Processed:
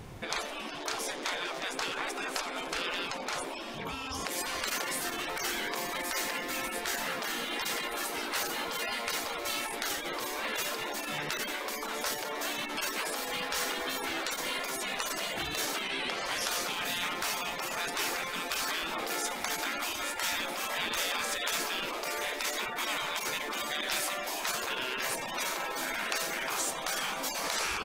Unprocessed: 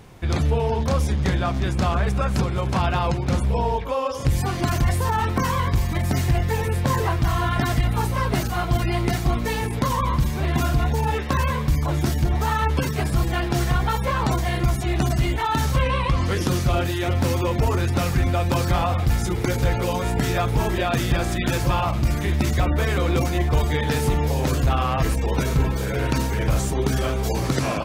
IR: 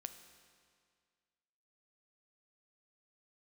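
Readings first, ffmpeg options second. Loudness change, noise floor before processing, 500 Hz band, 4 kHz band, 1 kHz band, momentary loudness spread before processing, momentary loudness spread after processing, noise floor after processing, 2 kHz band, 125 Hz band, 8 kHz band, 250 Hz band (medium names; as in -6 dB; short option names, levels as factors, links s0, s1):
-10.0 dB, -26 dBFS, -12.5 dB, 0.0 dB, -10.0 dB, 2 LU, 3 LU, -39 dBFS, -2.5 dB, -34.0 dB, 0.0 dB, -17.5 dB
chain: -af "afftfilt=real='re*lt(hypot(re,im),0.112)':imag='im*lt(hypot(re,im),0.112)':win_size=1024:overlap=0.75,aecho=1:1:88:0.126"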